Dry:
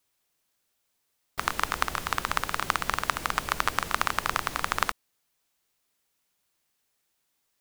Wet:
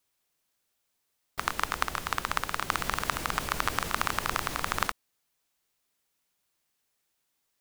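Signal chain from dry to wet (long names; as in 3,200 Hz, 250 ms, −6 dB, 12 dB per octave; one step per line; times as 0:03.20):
0:02.65–0:04.87: transient designer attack −1 dB, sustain +5 dB
level −2 dB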